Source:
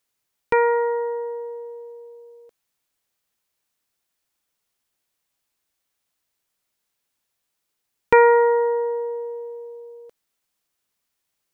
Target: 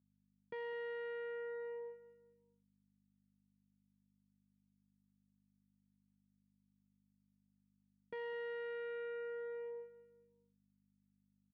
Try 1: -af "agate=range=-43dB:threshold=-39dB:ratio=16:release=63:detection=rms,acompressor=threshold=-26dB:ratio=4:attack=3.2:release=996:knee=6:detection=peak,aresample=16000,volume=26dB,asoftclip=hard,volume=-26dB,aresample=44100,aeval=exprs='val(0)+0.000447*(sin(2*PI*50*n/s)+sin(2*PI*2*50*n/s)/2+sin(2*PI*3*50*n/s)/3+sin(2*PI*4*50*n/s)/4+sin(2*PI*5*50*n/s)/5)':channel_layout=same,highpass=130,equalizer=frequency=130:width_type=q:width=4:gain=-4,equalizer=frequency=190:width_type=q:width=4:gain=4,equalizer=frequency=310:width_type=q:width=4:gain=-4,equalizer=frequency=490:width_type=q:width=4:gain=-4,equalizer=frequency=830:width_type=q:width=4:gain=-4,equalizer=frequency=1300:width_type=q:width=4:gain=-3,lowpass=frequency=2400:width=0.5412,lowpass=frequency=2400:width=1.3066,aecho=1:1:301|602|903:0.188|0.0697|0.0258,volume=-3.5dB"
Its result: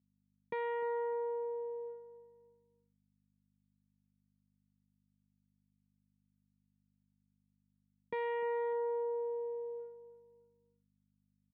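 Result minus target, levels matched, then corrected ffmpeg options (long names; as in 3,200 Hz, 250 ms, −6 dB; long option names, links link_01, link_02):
echo 96 ms late; gain into a clipping stage and back: distortion −8 dB
-af "agate=range=-43dB:threshold=-39dB:ratio=16:release=63:detection=rms,acompressor=threshold=-26dB:ratio=4:attack=3.2:release=996:knee=6:detection=peak,aresample=16000,volume=34.5dB,asoftclip=hard,volume=-34.5dB,aresample=44100,aeval=exprs='val(0)+0.000447*(sin(2*PI*50*n/s)+sin(2*PI*2*50*n/s)/2+sin(2*PI*3*50*n/s)/3+sin(2*PI*4*50*n/s)/4+sin(2*PI*5*50*n/s)/5)':channel_layout=same,highpass=130,equalizer=frequency=130:width_type=q:width=4:gain=-4,equalizer=frequency=190:width_type=q:width=4:gain=4,equalizer=frequency=310:width_type=q:width=4:gain=-4,equalizer=frequency=490:width_type=q:width=4:gain=-4,equalizer=frequency=830:width_type=q:width=4:gain=-4,equalizer=frequency=1300:width_type=q:width=4:gain=-3,lowpass=frequency=2400:width=0.5412,lowpass=frequency=2400:width=1.3066,aecho=1:1:205|410|615:0.188|0.0697|0.0258,volume=-3.5dB"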